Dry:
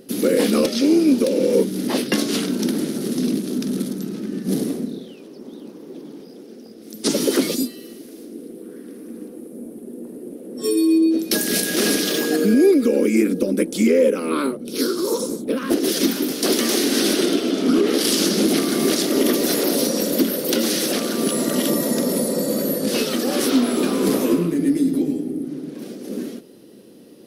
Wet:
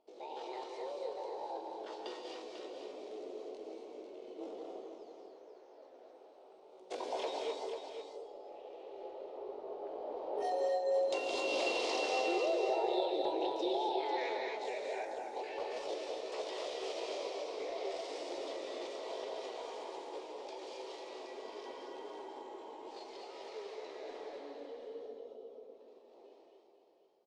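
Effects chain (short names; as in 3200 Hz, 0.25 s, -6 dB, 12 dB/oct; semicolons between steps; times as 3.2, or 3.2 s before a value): Doppler pass-by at 10.82, 6 m/s, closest 4.8 m; bell 78 Hz -9.5 dB 0.31 oct; compressor 8:1, threshold -26 dBFS, peak gain reduction 12.5 dB; pitch shift +9 st; ladder low-pass 4800 Hz, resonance 40%; on a send: echo 0.495 s -8 dB; on the sum: non-linear reverb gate 0.29 s rising, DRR 0.5 dB; gain +2 dB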